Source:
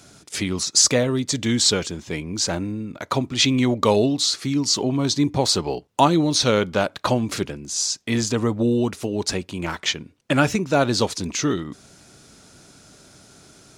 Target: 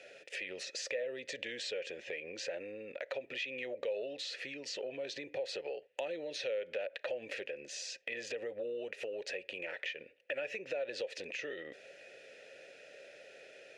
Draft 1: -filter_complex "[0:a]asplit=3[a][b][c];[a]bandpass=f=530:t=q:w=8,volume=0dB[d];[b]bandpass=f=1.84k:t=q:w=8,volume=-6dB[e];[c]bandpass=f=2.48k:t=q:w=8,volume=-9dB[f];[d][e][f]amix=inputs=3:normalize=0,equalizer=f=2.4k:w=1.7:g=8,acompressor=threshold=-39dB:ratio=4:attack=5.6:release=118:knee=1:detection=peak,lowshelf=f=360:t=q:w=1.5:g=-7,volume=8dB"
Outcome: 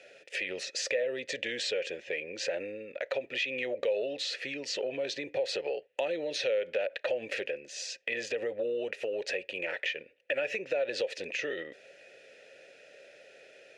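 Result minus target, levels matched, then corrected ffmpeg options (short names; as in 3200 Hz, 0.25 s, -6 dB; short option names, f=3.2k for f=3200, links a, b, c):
compressor: peak gain reduction -7 dB
-filter_complex "[0:a]asplit=3[a][b][c];[a]bandpass=f=530:t=q:w=8,volume=0dB[d];[b]bandpass=f=1.84k:t=q:w=8,volume=-6dB[e];[c]bandpass=f=2.48k:t=q:w=8,volume=-9dB[f];[d][e][f]amix=inputs=3:normalize=0,equalizer=f=2.4k:w=1.7:g=8,acompressor=threshold=-48.5dB:ratio=4:attack=5.6:release=118:knee=1:detection=peak,lowshelf=f=360:t=q:w=1.5:g=-7,volume=8dB"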